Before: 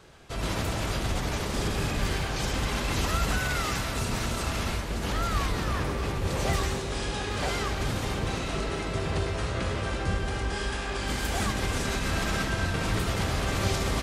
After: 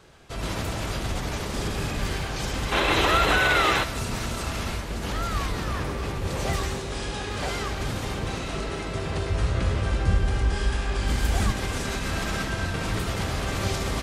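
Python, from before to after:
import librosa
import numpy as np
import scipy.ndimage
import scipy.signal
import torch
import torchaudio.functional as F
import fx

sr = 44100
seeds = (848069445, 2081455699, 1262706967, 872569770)

y = fx.spec_box(x, sr, start_s=2.72, length_s=1.12, low_hz=280.0, high_hz=4200.0, gain_db=10)
y = fx.low_shelf(y, sr, hz=120.0, db=11.0, at=(9.3, 11.53))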